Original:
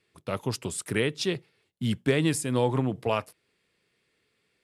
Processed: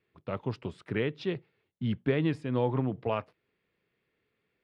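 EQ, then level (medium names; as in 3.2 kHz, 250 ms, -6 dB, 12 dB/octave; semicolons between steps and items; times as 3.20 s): low-pass 8.8 kHz 12 dB/octave; distance through air 350 m; -2.5 dB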